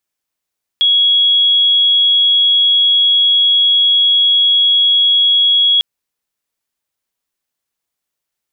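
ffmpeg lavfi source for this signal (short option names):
-f lavfi -i "aevalsrc='0.398*sin(2*PI*3330*t)':d=5:s=44100"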